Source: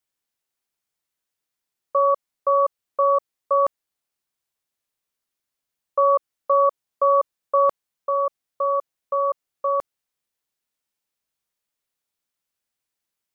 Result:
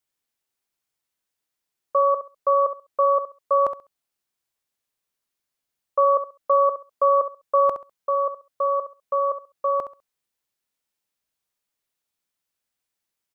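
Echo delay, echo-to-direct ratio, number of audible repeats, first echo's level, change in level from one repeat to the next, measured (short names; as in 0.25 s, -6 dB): 67 ms, -11.0 dB, 2, -11.0 dB, -14.0 dB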